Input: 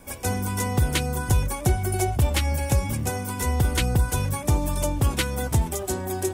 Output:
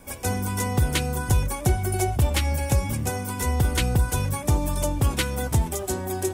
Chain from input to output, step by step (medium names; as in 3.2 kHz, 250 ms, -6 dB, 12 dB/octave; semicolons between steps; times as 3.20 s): de-hum 337.6 Hz, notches 38